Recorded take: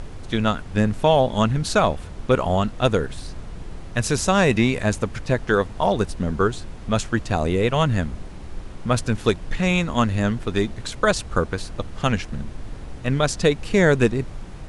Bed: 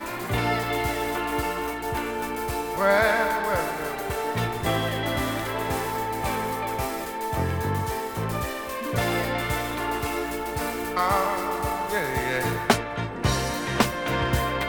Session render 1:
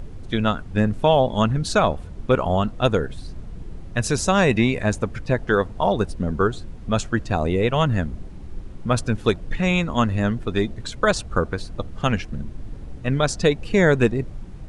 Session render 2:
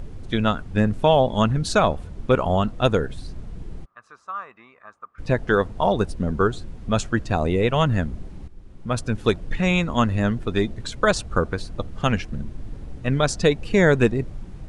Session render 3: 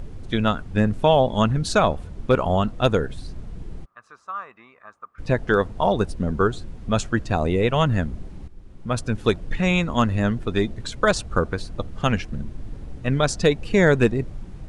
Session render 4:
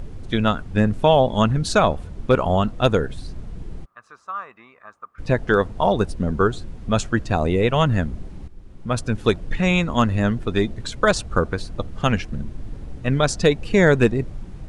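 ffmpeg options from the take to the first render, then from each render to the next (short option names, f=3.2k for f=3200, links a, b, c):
-af "afftdn=nr=9:nf=-37"
-filter_complex "[0:a]asplit=3[a][b][c];[a]afade=t=out:st=3.84:d=0.02[d];[b]bandpass=f=1.2k:t=q:w=13,afade=t=in:st=3.84:d=0.02,afade=t=out:st=5.18:d=0.02[e];[c]afade=t=in:st=5.18:d=0.02[f];[d][e][f]amix=inputs=3:normalize=0,asplit=2[g][h];[g]atrim=end=8.48,asetpts=PTS-STARTPTS,afade=t=out:st=8.476:d=0.004:c=hsin:silence=0.211349[i];[h]atrim=start=8.48,asetpts=PTS-STARTPTS,afade=t=in:d=0.85:silence=0.211349[j];[i][j]concat=n=2:v=0:a=1"
-af "asoftclip=type=hard:threshold=-6.5dB"
-af "volume=1.5dB"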